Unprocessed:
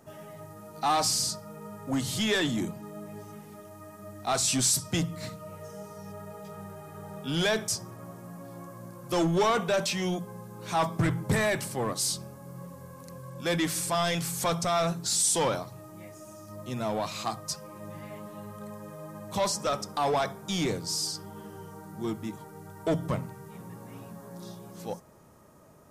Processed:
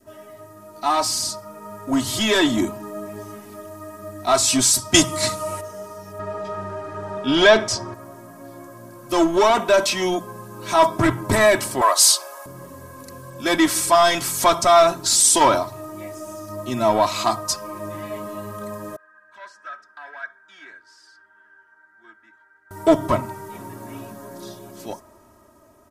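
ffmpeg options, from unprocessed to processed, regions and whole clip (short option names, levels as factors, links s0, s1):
-filter_complex "[0:a]asettb=1/sr,asplit=3[s0][s1][s2];[s0]atrim=end=4.944[s3];[s1]atrim=start=4.94:end=5.61,asetpts=PTS-STARTPTS,afade=t=in:d=0.004:c=qsin,afade=t=out:st=0.666:d=0.004:c=qsin,lowpass=f=10000:w=0.5412,lowpass=f=10000:w=1.3066,aemphasis=mode=production:type=75kf,acontrast=34[s4];[s2]atrim=start=5.606[s5];[s3][s4]acrossfade=d=0.004:c1=hsin:c2=qsin[s6];[s6][s5]acrossfade=d=0.004:c1=qsin:c2=hsin,asettb=1/sr,asplit=3[s7][s8][s9];[s7]atrim=end=6.194[s10];[s8]atrim=start=6.19:end=7.94,asetpts=PTS-STARTPTS,afade=t=in:d=0.004:c=qsin,afade=t=out:st=1.746:d=0.004:c=qsin,lowpass=4800,acontrast=80[s11];[s9]atrim=start=7.936[s12];[s10][s11]acrossfade=d=0.004:c1=hsin:c2=qsin[s13];[s13][s12]acrossfade=d=0.004:c1=qsin:c2=hsin,asettb=1/sr,asplit=3[s14][s15][s16];[s14]atrim=end=11.814[s17];[s15]atrim=start=11.81:end=12.46,asetpts=PTS-STARTPTS,afade=t=in:d=0.004:c=qsin,afade=t=out:st=0.646:d=0.004:c=qsin,highpass=f=610:w=0.5412,highpass=f=610:w=1.3066,acontrast=58[s18];[s16]atrim=start=12.456[s19];[s17][s18]acrossfade=d=0.004:c1=hsin:c2=qsin[s20];[s20][s19]acrossfade=d=0.004:c1=qsin:c2=hsin,asettb=1/sr,asplit=3[s21][s22][s23];[s21]atrim=end=18.964[s24];[s22]atrim=start=18.96:end=22.71,asetpts=PTS-STARTPTS,afade=t=in:d=0.004:c=qsin,afade=t=out:st=3.746:d=0.004:c=qsin,aeval=exprs='val(0)+0.00316*(sin(2*PI*50*n/s)+sin(2*PI*2*50*n/s)/2+sin(2*PI*3*50*n/s)/3+sin(2*PI*4*50*n/s)/4+sin(2*PI*5*50*n/s)/5)':c=same,bandpass=f=1600:t=q:w=14[s25];[s23]atrim=start=22.706[s26];[s24][s25]acrossfade=d=0.004:c1=hsin:c2=qsin[s27];[s27][s26]acrossfade=d=0.004:c1=qsin:c2=hsin,adynamicequalizer=threshold=0.00794:dfrequency=980:dqfactor=1.6:tfrequency=980:tqfactor=1.6:attack=5:release=100:ratio=0.375:range=3:mode=boostabove:tftype=bell,aecho=1:1:3.1:0.82,dynaudnorm=f=520:g=7:m=2.66"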